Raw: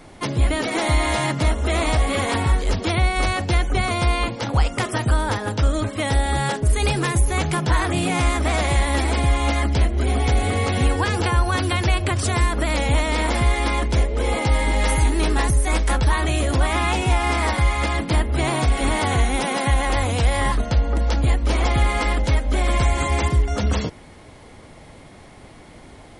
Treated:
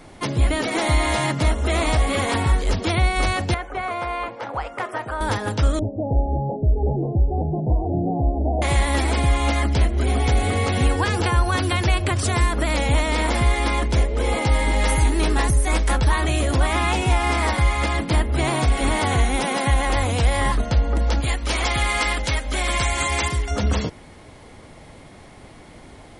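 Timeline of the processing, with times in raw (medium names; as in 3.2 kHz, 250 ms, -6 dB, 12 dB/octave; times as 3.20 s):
3.54–5.21 s: three-band isolator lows -17 dB, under 420 Hz, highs -17 dB, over 2.1 kHz
5.79–8.62 s: steep low-pass 810 Hz 72 dB/octave
21.20–23.51 s: tilt shelf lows -6 dB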